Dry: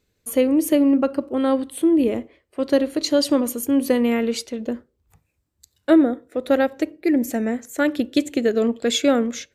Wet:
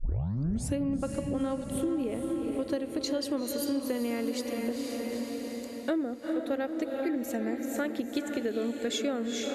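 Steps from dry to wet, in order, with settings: tape start-up on the opening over 0.79 s; echo that smears into a reverb 453 ms, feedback 56%, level -7 dB; compression 4:1, threshold -27 dBFS, peak gain reduction 14 dB; trim -2.5 dB

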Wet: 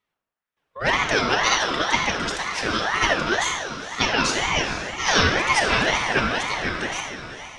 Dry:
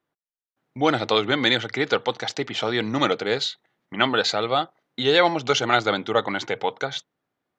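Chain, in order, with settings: echo that smears into a reverb 472 ms, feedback 46%, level -12 dB; formant shift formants +4 st; simulated room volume 2400 m³, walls mixed, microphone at 2.6 m; ring modulator with a swept carrier 1.2 kHz, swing 35%, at 2 Hz; trim -1 dB

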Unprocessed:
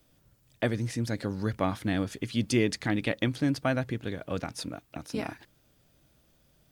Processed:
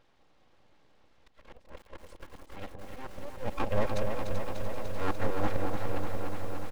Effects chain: reverse the whole clip; high-pass 140 Hz 12 dB/octave; low-pass that closes with the level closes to 910 Hz, closed at -24 dBFS; comb 3.7 ms, depth 90%; slow attack 775 ms; Gaussian low-pass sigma 2.3 samples; full-wave rectifier; on a send: echo whose repeats swap between lows and highs 193 ms, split 860 Hz, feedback 65%, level -4.5 dB; on the sum: bit-crushed delay 295 ms, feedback 80%, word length 9-bit, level -6.5 dB; trim +3 dB

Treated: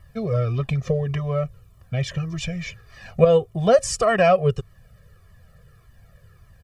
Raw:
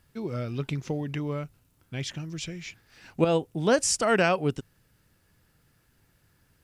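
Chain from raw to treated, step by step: treble shelf 2.2 kHz -11 dB; comb 1.7 ms, depth 98%; in parallel at +2.5 dB: compression, threshold -33 dBFS, peak gain reduction 17.5 dB; on the sum: Shepard-style flanger falling 1.7 Hz; trim +6.5 dB

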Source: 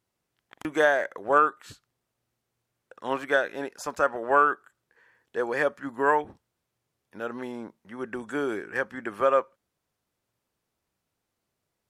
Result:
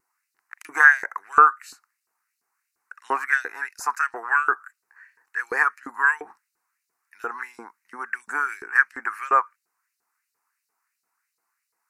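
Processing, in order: LFO high-pass saw up 2.9 Hz 470–4300 Hz; vibrato 0.5 Hz 5.9 cents; static phaser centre 1.4 kHz, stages 4; trim +7 dB

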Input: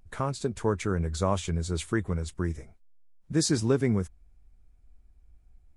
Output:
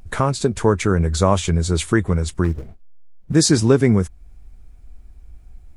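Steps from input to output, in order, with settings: 2.44–3.35 s: median filter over 41 samples; in parallel at 0 dB: compression, threshold -39 dBFS, peak gain reduction 18 dB; on the sum: trim +9 dB

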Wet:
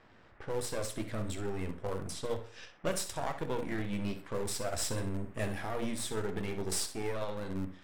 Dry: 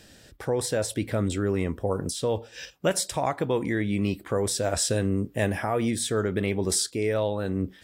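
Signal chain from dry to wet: partial rectifier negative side -12 dB; hum notches 60/120/180/240/300/360/420/480/540 Hz; on a send: flutter echo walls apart 10.9 m, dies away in 0.36 s; on the sum: band noise 130–2000 Hz -58 dBFS; flange 0.42 Hz, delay 8 ms, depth 5.1 ms, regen -66%; in parallel at -10 dB: Schmitt trigger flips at -35.5 dBFS; on the sum: level-controlled noise filter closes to 2.3 kHz, open at -31 dBFS; trim -1.5 dB

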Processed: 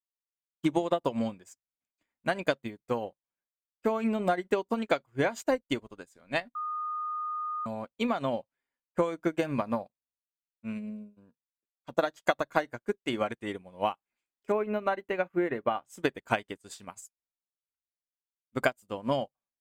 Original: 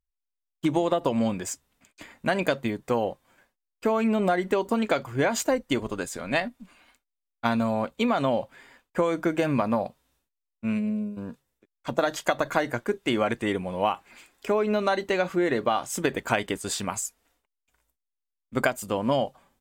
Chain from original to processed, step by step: 6.55–7.66 s: bleep 1.23 kHz -22 dBFS; 14.52–15.85 s: high-order bell 5.7 kHz -13 dB; upward expansion 2.5:1, over -44 dBFS

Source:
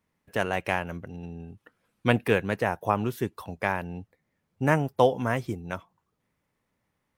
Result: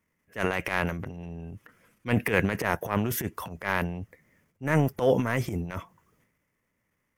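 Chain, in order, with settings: graphic EQ with 31 bands 800 Hz -7 dB, 2 kHz +6 dB, 4 kHz -10 dB, 6.3 kHz +3 dB, 12.5 kHz +5 dB; transient shaper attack -12 dB, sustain +11 dB

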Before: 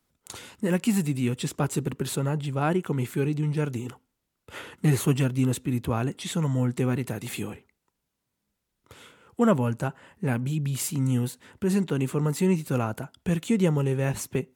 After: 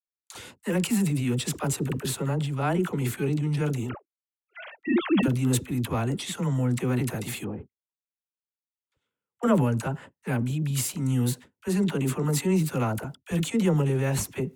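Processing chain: 3.89–5.23 s: formants replaced by sine waves; 7.44–9.43 s: low-pass that closes with the level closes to 780 Hz, closed at -33.5 dBFS; gate -44 dBFS, range -40 dB; transient shaper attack -3 dB, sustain +6 dB; phase dispersion lows, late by 52 ms, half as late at 560 Hz

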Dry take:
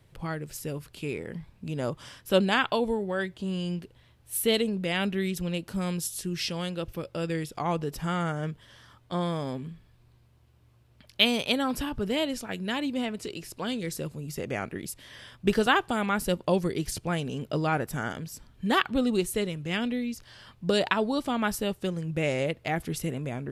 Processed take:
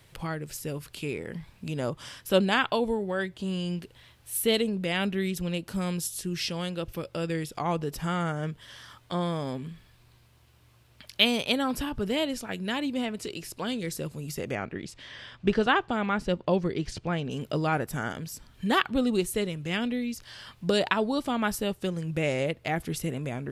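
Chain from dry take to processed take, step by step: 14.55–17.31 s: distance through air 120 m; tape noise reduction on one side only encoder only

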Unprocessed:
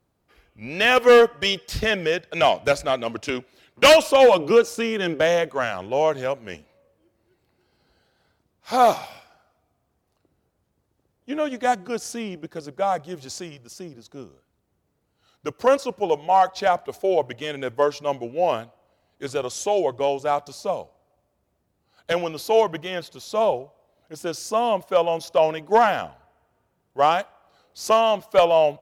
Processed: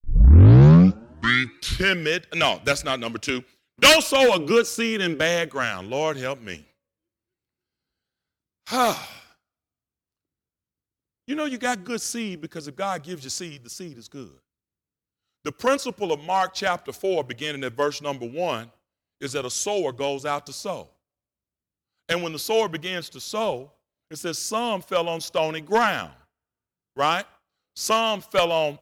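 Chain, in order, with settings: tape start-up on the opening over 2.13 s; gate with hold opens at -42 dBFS; FFT filter 280 Hz 0 dB, 730 Hz -9 dB, 1.3 kHz 0 dB, 7.5 kHz +4 dB; trim +1.5 dB

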